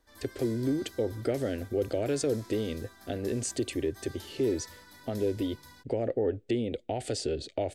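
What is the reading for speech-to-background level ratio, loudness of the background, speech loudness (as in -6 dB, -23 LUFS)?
18.5 dB, -50.5 LUFS, -32.0 LUFS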